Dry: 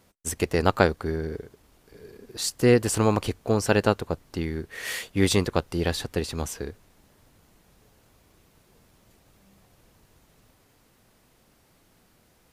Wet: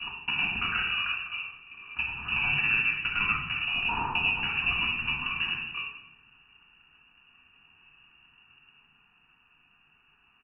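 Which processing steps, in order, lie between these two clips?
slices in reverse order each 83 ms, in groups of 4; notches 60/120/180/240/300/360/420/480 Hz; soft clip -12 dBFS, distortion -16 dB; compressor 4:1, threshold -27 dBFS, peak gain reduction 8.5 dB; dynamic EQ 760 Hz, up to +3 dB, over -51 dBFS, Q 4.4; speakerphone echo 0.21 s, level -22 dB; tempo 1.2×; sample leveller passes 1; inverted band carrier 2800 Hz; fixed phaser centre 2100 Hz, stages 6; added harmonics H 2 -40 dB, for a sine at -18 dBFS; shoebox room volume 340 m³, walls mixed, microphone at 1.8 m

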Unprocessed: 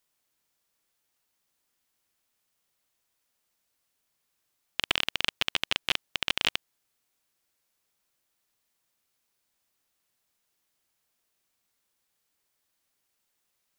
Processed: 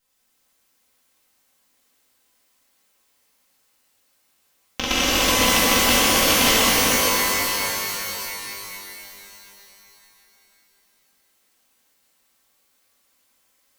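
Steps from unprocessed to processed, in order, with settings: minimum comb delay 3.8 ms; delay with a stepping band-pass 0.176 s, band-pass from 280 Hz, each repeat 0.7 oct, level -1.5 dB; shimmer reverb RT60 3.3 s, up +12 st, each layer -2 dB, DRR -8 dB; gain +4 dB

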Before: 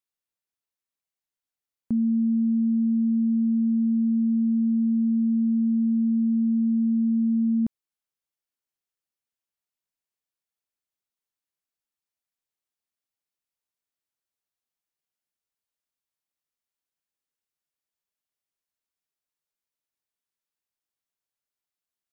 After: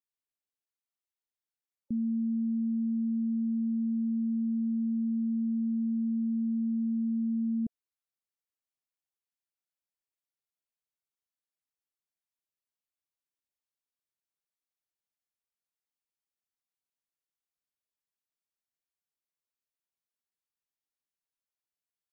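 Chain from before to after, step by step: spectral gate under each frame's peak -30 dB strong; gain -7.5 dB

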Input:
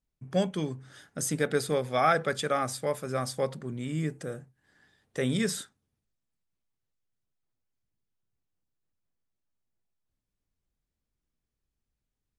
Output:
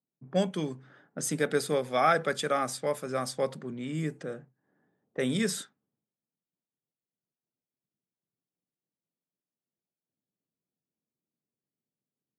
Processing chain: low-pass opened by the level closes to 630 Hz, open at -27.5 dBFS; HPF 150 Hz 24 dB/oct

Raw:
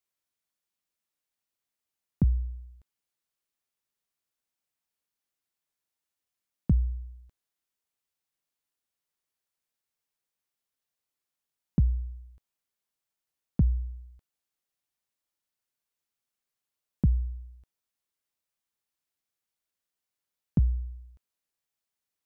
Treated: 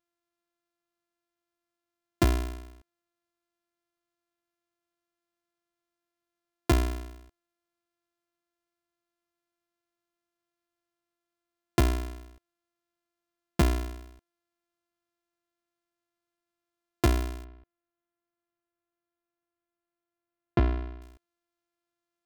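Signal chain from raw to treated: sample sorter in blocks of 128 samples; 17.44–21.02 air absorption 360 m

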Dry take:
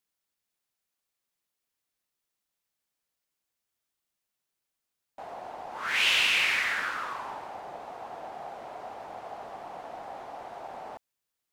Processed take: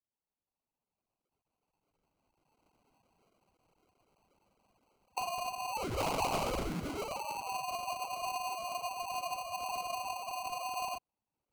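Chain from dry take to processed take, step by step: sine-wave speech; recorder AGC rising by 11 dB/s; sample-and-hold 25×; Doppler distortion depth 0.3 ms; gain -7 dB

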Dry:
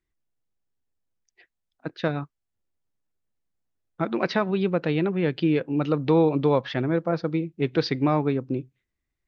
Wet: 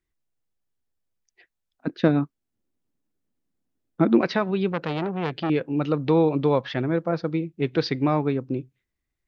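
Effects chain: 1.87–4.21 bell 260 Hz +13 dB 1.3 oct; 4.72–5.5 core saturation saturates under 1100 Hz

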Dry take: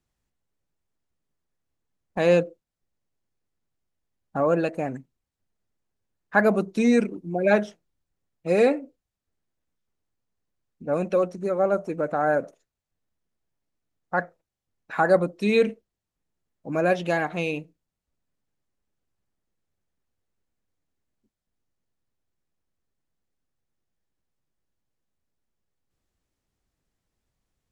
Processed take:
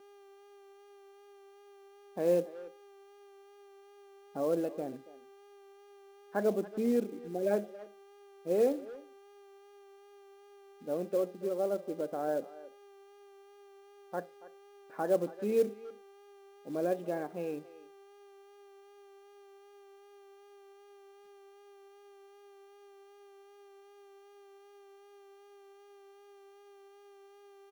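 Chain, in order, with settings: buzz 400 Hz, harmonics 16, -44 dBFS -2 dB/oct; vibrato 2.6 Hz 21 cents; band-pass 390 Hz, Q 1.3; companded quantiser 6-bit; speakerphone echo 0.28 s, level -17 dB; gain -6.5 dB

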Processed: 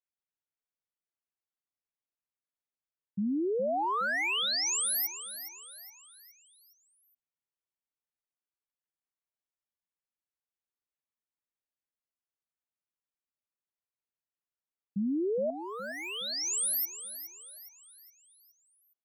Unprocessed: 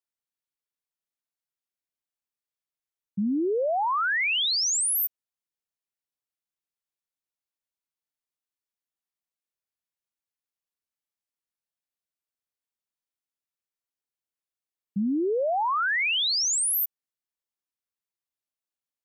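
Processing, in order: Wiener smoothing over 9 samples; 15.5–16.67 pre-emphasis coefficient 0.8; feedback echo 0.416 s, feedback 45%, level -12 dB; gain -4.5 dB

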